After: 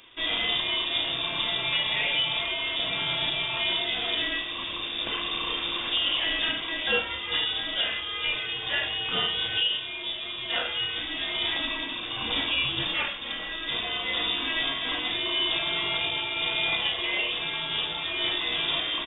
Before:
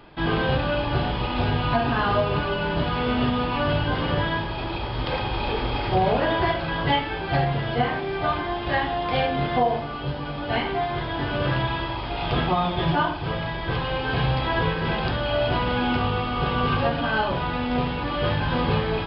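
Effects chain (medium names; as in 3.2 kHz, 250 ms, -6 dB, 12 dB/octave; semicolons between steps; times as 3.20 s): 12.85–13.52 s: comb filter that takes the minimum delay 3.6 ms; treble shelf 2.4 kHz +9.5 dB; doubling 34 ms -9 dB; frequency inversion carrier 3.6 kHz; trim -6.5 dB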